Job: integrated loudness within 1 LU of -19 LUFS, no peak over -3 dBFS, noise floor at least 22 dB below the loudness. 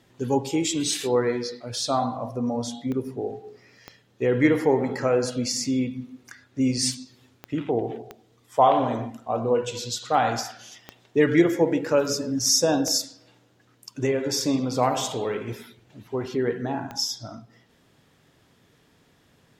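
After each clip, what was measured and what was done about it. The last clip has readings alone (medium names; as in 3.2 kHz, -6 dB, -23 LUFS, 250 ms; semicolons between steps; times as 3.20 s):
clicks found 7; loudness -24.5 LUFS; peak level -5.0 dBFS; loudness target -19.0 LUFS
-> de-click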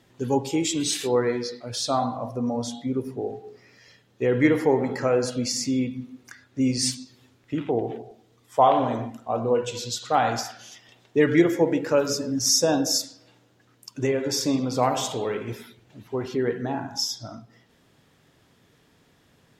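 clicks found 0; loudness -24.5 LUFS; peak level -5.0 dBFS; loudness target -19.0 LUFS
-> trim +5.5 dB; peak limiter -3 dBFS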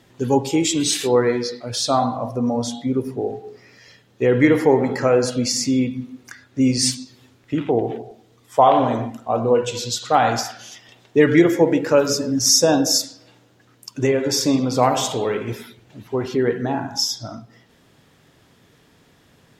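loudness -19.5 LUFS; peak level -3.0 dBFS; noise floor -56 dBFS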